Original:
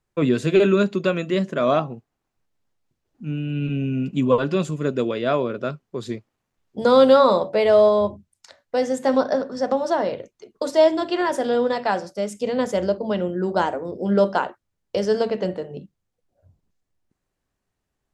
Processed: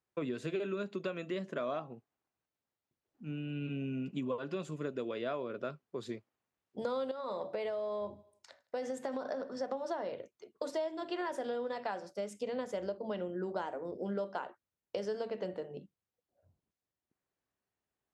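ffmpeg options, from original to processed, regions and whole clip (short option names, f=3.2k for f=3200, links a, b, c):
-filter_complex "[0:a]asettb=1/sr,asplit=3[a][b][c];[a]atrim=end=7.114[d];[b]atrim=start=7.11:end=9.6,asetpts=PTS-STARTPTS,afade=t=in:d=0.004:c=qsin,afade=t=out:st=2.486:d=0.004:c=qsin,acompressor=threshold=-20dB:ratio=10:attack=3.2:release=140:knee=1:detection=peak,aecho=1:1:80|160|240|320:0.0631|0.0347|0.0191|0.0105,atrim=end_sample=109809[e];[c]atrim=start=9.596[f];[d][e]acrossfade=d=0.004:c1=hsin:c2=qsin[g];[g][f]acrossfade=d=0.004:c1=qsin:c2=hsin,bass=f=250:g=-6,treble=f=4k:g=-4,acompressor=threshold=-25dB:ratio=6,highpass=65,volume=-8.5dB"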